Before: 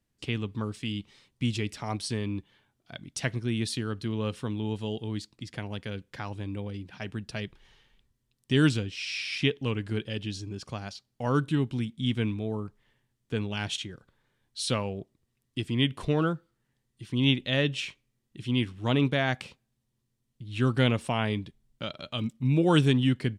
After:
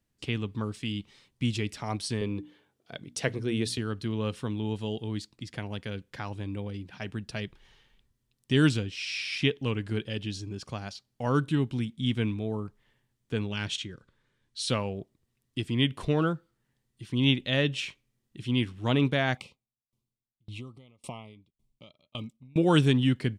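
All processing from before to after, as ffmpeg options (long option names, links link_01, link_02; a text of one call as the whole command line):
ffmpeg -i in.wav -filter_complex "[0:a]asettb=1/sr,asplit=3[link_01][link_02][link_03];[link_01]atrim=end=2.214[link_04];[link_02]atrim=start=2.21:end=3.78,asetpts=PTS-STARTPTS,afade=type=in:duration=0.004:curve=qsin,afade=type=out:start_time=1.566:duration=0.004:curve=qsin,highpass=80,equalizer=frequency=460:width_type=o:width=0.55:gain=10,bandreject=frequency=60:width_type=h:width=6,bandreject=frequency=120:width_type=h:width=6,bandreject=frequency=180:width_type=h:width=6,bandreject=frequency=240:width_type=h:width=6,bandreject=frequency=300:width_type=h:width=6[link_05];[link_03]atrim=start=3.776[link_06];[link_04][link_05]acrossfade=duration=0.004:curve1=hsin:curve2=qsin[link_07];[link_07][link_06]acrossfade=duration=0.004:curve1=qsin:curve2=hsin,asettb=1/sr,asplit=3[link_08][link_09][link_10];[link_08]atrim=end=13.524[link_11];[link_09]atrim=start=13.52:end=14.68,asetpts=PTS-STARTPTS,afade=type=in:duration=0.004:curve=qsin,afade=type=out:start_time=1.156:duration=0.004:curve=qsin,lowpass=9100,equalizer=frequency=750:width_type=o:width=0.4:gain=-9.5[link_12];[link_10]atrim=start=14.676[link_13];[link_11][link_12]acrossfade=duration=0.004:curve1=hsin:curve2=qsin[link_14];[link_14][link_13]acrossfade=duration=0.004:curve1=qsin:curve2=hsin,asettb=1/sr,asplit=3[link_15][link_16][link_17];[link_15]atrim=end=19.374[link_18];[link_16]atrim=start=19.37:end=22.56,asetpts=PTS-STARTPTS,afade=type=in:duration=0.004:curve=qsin,afade=type=out:start_time=3.186:duration=0.004:curve=qsin,acompressor=threshold=-29dB:ratio=5:attack=3.2:release=140:knee=1:detection=peak,asuperstop=centerf=1600:order=12:qfactor=2.2,aeval=exprs='val(0)*pow(10,-33*if(lt(mod(1.8*n/s,1),2*abs(1.8)/1000),1-mod(1.8*n/s,1)/(2*abs(1.8)/1000),(mod(1.8*n/s,1)-2*abs(1.8)/1000)/(1-2*abs(1.8)/1000))/20)':channel_layout=same[link_19];[link_17]atrim=start=22.556[link_20];[link_18][link_19]acrossfade=duration=0.004:curve1=hsin:curve2=qsin[link_21];[link_21][link_20]acrossfade=duration=0.004:curve1=qsin:curve2=hsin" out.wav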